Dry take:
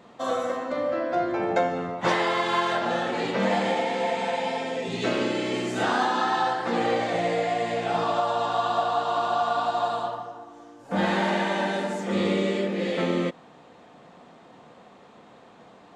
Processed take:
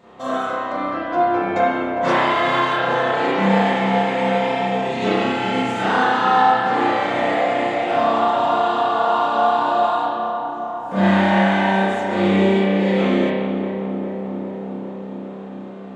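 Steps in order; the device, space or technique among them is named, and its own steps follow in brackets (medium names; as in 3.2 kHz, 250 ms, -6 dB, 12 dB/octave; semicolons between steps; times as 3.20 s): dub delay into a spring reverb (filtered feedback delay 405 ms, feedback 79%, low-pass 1.6 kHz, level -7.5 dB; spring tank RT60 1.1 s, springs 31 ms, chirp 75 ms, DRR -8 dB); trim -1.5 dB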